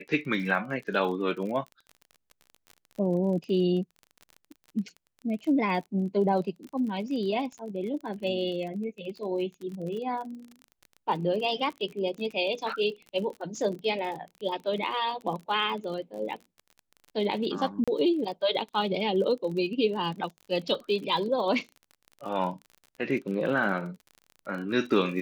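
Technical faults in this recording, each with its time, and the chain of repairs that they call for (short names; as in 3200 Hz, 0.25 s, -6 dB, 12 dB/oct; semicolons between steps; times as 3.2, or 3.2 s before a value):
crackle 35/s -36 dBFS
17.84–17.88 gap 36 ms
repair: de-click; interpolate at 17.84, 36 ms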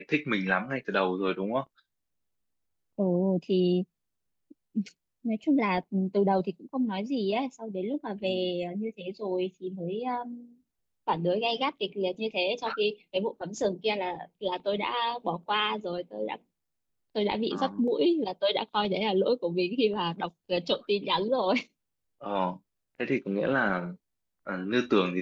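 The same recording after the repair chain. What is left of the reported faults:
none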